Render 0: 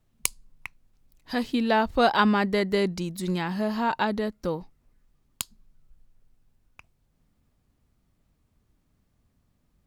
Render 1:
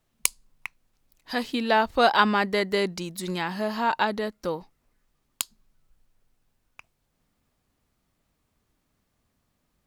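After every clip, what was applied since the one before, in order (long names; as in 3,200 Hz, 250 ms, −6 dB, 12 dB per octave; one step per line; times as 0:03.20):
low-shelf EQ 280 Hz −11 dB
level +3 dB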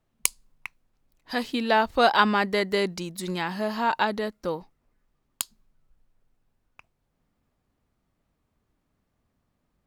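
one half of a high-frequency compander decoder only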